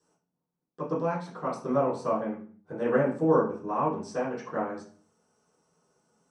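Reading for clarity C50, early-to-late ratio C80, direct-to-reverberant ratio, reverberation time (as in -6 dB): 7.0 dB, 11.5 dB, -11.0 dB, 0.45 s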